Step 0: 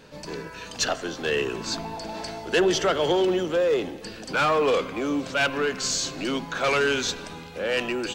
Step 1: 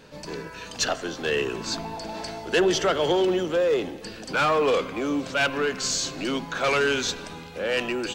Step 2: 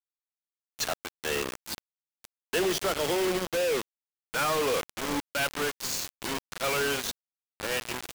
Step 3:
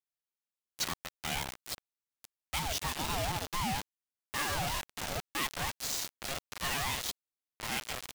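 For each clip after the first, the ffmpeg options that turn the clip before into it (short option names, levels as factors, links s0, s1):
-af anull
-af "acrusher=bits=3:mix=0:aa=0.000001,volume=0.473"
-filter_complex "[0:a]acrossover=split=2100[s0][s1];[s0]alimiter=level_in=1.41:limit=0.0631:level=0:latency=1:release=397,volume=0.708[s2];[s2][s1]amix=inputs=2:normalize=0,aeval=exprs='val(0)*sin(2*PI*400*n/s+400*0.35/4.2*sin(2*PI*4.2*n/s))':c=same"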